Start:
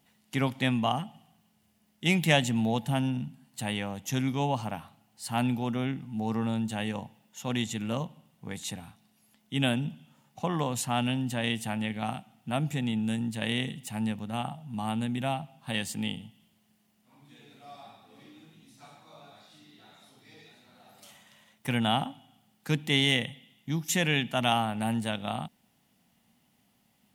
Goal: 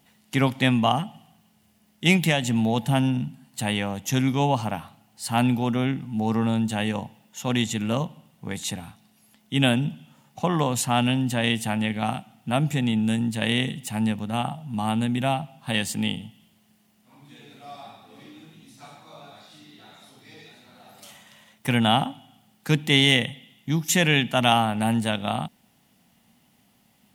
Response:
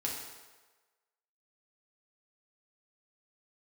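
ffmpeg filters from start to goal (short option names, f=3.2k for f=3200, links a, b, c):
-filter_complex "[0:a]asplit=3[a][b][c];[a]afade=t=out:st=2.16:d=0.02[d];[b]acompressor=threshold=-24dB:ratio=6,afade=t=in:st=2.16:d=0.02,afade=t=out:st=2.76:d=0.02[e];[c]afade=t=in:st=2.76:d=0.02[f];[d][e][f]amix=inputs=3:normalize=0,volume=6.5dB"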